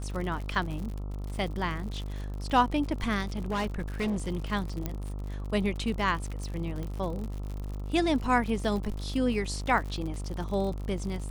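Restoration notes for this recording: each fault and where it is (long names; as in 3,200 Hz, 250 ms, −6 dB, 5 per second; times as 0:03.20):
mains buzz 50 Hz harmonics 27 −35 dBFS
surface crackle 81 per second −35 dBFS
0:03.21–0:04.32: clipping −26 dBFS
0:04.86: click −17 dBFS
0:06.83: click −25 dBFS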